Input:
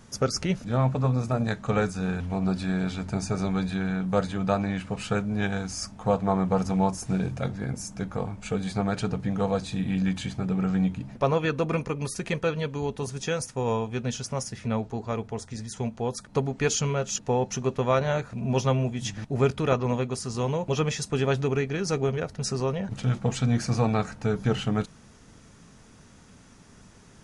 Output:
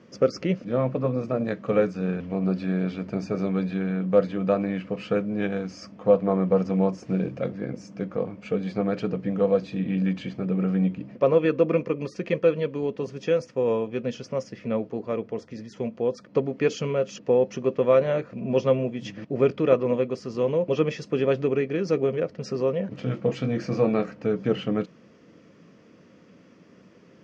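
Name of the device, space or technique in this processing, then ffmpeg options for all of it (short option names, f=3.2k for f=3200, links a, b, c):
kitchen radio: -filter_complex "[0:a]asettb=1/sr,asplit=3[a][b][c];[a]atrim=end=22.894[d];[b]atrim=start=22.89:end=24.1,asetpts=PTS-STARTPTS,afade=t=in:d=0.004:c=qsin,afade=t=out:st=1.206:d=0.004:c=qsin,asplit=2[e][f];[f]adelay=23,volume=-9dB[g];[e][g]amix=inputs=2:normalize=0,atrim=end_sample=53361[h];[c]atrim=start=24.096[i];[d][h]acrossfade=d=0.004:c1=hsin:c2=qsin[j];[j][i]acrossfade=d=0.004:c1=qsin:c2=hsin,highpass=180,equalizer=f=180:t=q:w=4:g=4,equalizer=f=320:t=q:w=4:g=7,equalizer=f=520:t=q:w=4:g=9,equalizer=f=840:t=q:w=4:g=-10,equalizer=f=1.5k:t=q:w=4:g=-5,equalizer=f=3.8k:t=q:w=4:g=-10,lowpass=f=4.4k:w=0.5412,lowpass=f=4.4k:w=1.3066"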